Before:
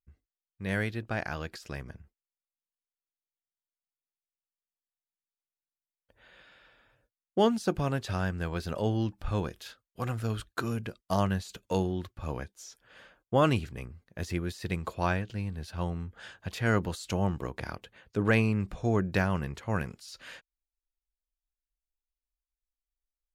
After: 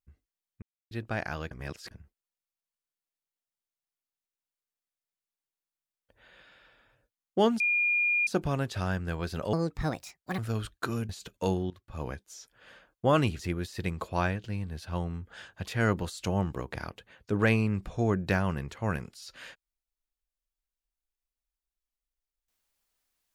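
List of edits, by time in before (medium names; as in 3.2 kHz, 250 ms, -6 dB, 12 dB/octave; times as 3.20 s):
0.62–0.91 s: mute
1.51–1.91 s: reverse
7.60 s: add tone 2.42 kHz -23 dBFS 0.67 s
8.86–10.13 s: speed 149%
10.84–11.38 s: delete
11.99–12.36 s: fade in, from -19 dB
13.68–14.25 s: delete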